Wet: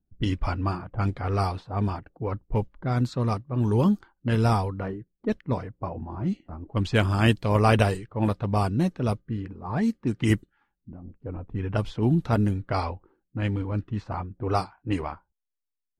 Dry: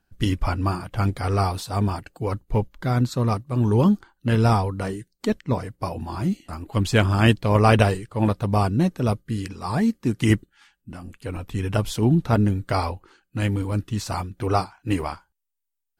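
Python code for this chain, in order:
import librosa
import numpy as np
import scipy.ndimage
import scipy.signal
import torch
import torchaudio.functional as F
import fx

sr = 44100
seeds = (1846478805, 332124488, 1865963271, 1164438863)

y = fx.env_lowpass(x, sr, base_hz=330.0, full_db=-15.5)
y = y * 10.0 ** (-3.5 / 20.0)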